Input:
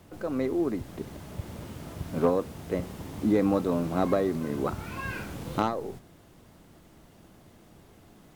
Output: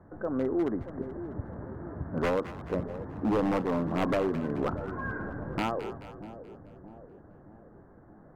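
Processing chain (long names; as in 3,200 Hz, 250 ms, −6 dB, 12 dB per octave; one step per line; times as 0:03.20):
elliptic low-pass filter 1,700 Hz, stop band 40 dB
wave folding −21 dBFS
echo with a time of its own for lows and highs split 730 Hz, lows 630 ms, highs 215 ms, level −12 dB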